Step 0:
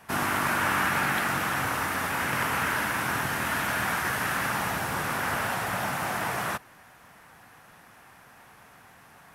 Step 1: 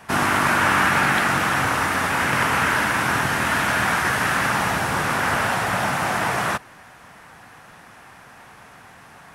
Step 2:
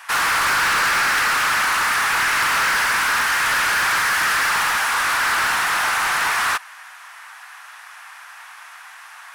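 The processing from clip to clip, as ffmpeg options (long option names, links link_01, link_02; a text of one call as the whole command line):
ffmpeg -i in.wav -af "equalizer=frequency=14000:width_type=o:width=0.42:gain=-12.5,volume=7.5dB" out.wav
ffmpeg -i in.wav -af "highpass=frequency=1000:width=0.5412,highpass=frequency=1000:width=1.3066,asoftclip=type=hard:threshold=-24dB,volume=7.5dB" out.wav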